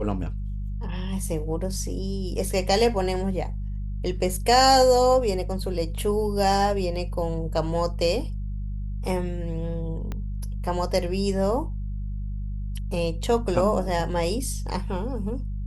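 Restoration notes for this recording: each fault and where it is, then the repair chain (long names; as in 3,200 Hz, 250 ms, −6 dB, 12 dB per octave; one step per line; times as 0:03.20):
mains hum 50 Hz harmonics 4 −30 dBFS
0:10.12: click −19 dBFS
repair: click removal
hum removal 50 Hz, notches 4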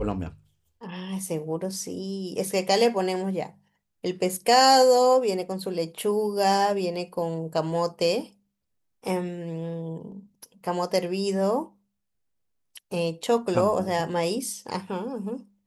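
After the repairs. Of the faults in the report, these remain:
0:10.12: click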